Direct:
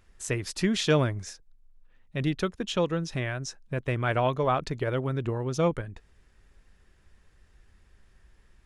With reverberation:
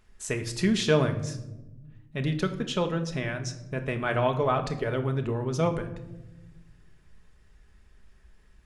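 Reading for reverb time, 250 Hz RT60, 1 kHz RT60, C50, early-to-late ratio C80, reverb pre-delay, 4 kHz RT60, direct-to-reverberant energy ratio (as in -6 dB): 1.1 s, 2.0 s, 0.90 s, 11.5 dB, 14.5 dB, 5 ms, 0.60 s, 5.5 dB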